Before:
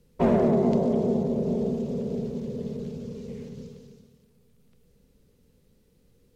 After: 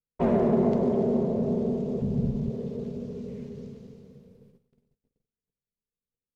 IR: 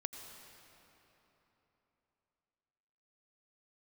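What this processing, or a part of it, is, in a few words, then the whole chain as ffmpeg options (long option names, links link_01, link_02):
swimming-pool hall: -filter_complex "[1:a]atrim=start_sample=2205[link_01];[0:a][link_01]afir=irnorm=-1:irlink=0,highshelf=frequency=3600:gain=-7,asplit=3[link_02][link_03][link_04];[link_02]afade=type=out:start_time=2:duration=0.02[link_05];[link_03]asubboost=boost=9.5:cutoff=150,afade=type=in:start_time=2:duration=0.02,afade=type=out:start_time=2.49:duration=0.02[link_06];[link_04]afade=type=in:start_time=2.49:duration=0.02[link_07];[link_05][link_06][link_07]amix=inputs=3:normalize=0,agate=range=-35dB:threshold=-55dB:ratio=16:detection=peak"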